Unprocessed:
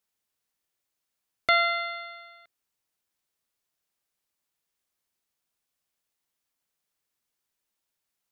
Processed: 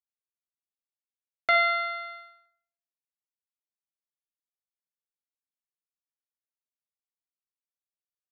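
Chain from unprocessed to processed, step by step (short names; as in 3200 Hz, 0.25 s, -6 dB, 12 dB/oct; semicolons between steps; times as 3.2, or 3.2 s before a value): expander -41 dBFS; bell 3600 Hz -8.5 dB 0.71 oct; reverb RT60 0.60 s, pre-delay 7 ms, DRR 5 dB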